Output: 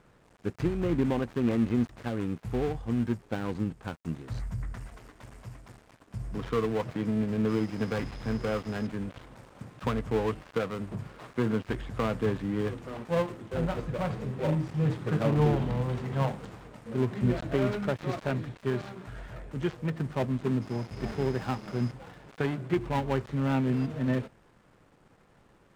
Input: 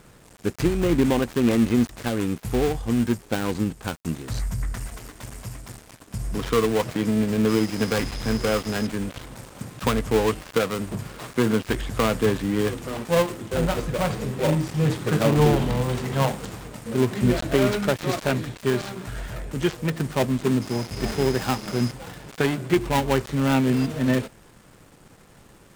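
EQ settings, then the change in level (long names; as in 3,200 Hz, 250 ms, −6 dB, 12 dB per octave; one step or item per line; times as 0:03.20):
low-pass filter 1,500 Hz 6 dB per octave
low-shelf EQ 500 Hz −5.5 dB
dynamic equaliser 120 Hz, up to +6 dB, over −40 dBFS, Q 0.73
−5.0 dB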